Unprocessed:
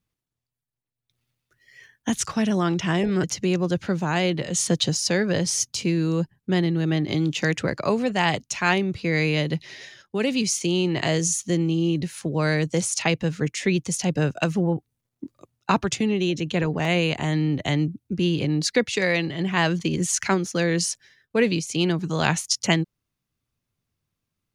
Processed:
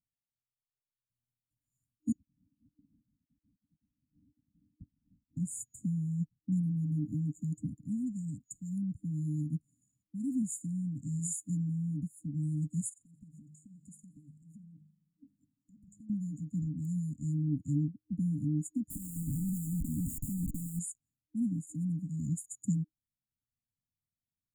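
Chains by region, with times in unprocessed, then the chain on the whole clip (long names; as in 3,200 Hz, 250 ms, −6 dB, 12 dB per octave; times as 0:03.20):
0:02.12–0:05.37: voice inversion scrambler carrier 3,700 Hz + high-pass filter 170 Hz 6 dB per octave
0:12.89–0:16.10: hum removal 51 Hz, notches 4 + downward compressor 16 to 1, threshold −33 dBFS + feedback echo with a swinging delay time 86 ms, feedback 71%, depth 98 cents, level −22 dB
0:18.90–0:20.79: Savitzky-Golay smoothing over 15 samples + comparator with hysteresis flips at −35.5 dBFS
whole clip: brick-wall band-stop 310–6,800 Hz; expander for the loud parts 1.5 to 1, over −42 dBFS; level −5.5 dB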